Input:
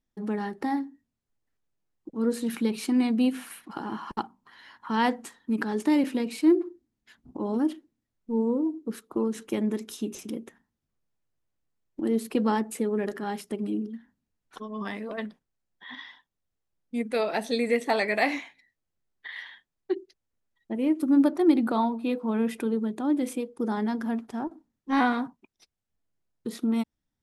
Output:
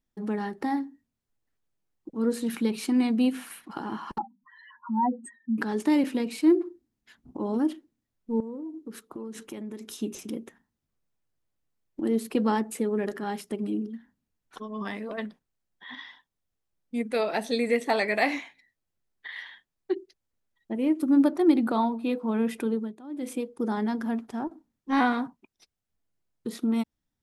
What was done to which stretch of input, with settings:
0:04.18–0:05.58: expanding power law on the bin magnitudes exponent 3.7
0:08.40–0:10.02: downward compressor 5 to 1, threshold −35 dBFS
0:22.72–0:23.37: duck −15.5 dB, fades 0.27 s

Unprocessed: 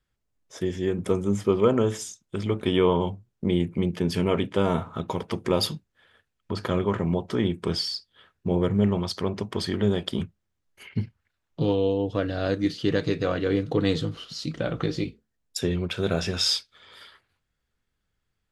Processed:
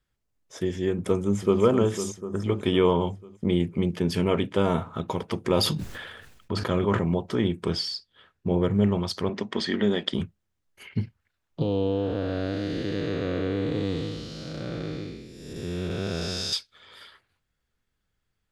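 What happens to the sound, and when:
0:01.17–0:01.61: delay throw 250 ms, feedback 70%, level −7.5 dB
0:02.20–0:02.44: gain on a spectral selection 1,900–5,000 Hz −15 dB
0:05.52–0:07.04: level that may fall only so fast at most 41 dB per second
0:07.70–0:08.69: high-shelf EQ 10,000 Hz −9 dB
0:09.29–0:10.14: loudspeaker in its box 210–7,400 Hz, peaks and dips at 230 Hz +7 dB, 1,900 Hz +8 dB, 3,400 Hz +4 dB
0:11.62–0:16.53: spectrum smeared in time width 429 ms

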